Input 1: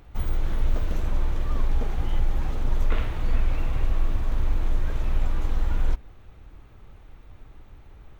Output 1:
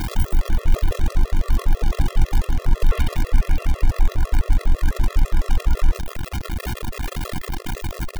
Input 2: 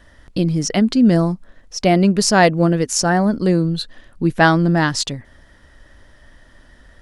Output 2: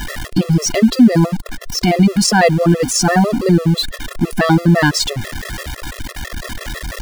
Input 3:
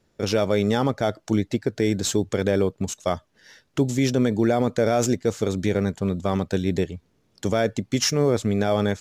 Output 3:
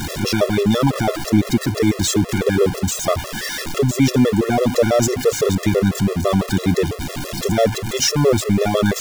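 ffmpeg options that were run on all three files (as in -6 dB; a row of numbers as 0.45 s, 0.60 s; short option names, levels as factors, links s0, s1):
-af "aeval=exprs='val(0)+0.5*0.0708*sgn(val(0))':c=same,alimiter=level_in=2:limit=0.891:release=50:level=0:latency=1,afftfilt=real='re*gt(sin(2*PI*6*pts/sr)*(1-2*mod(floor(b*sr/1024/350),2)),0)':imag='im*gt(sin(2*PI*6*pts/sr)*(1-2*mod(floor(b*sr/1024/350),2)),0)':win_size=1024:overlap=0.75"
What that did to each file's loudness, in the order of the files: +5.0 LU, +2.5 LU, +5.0 LU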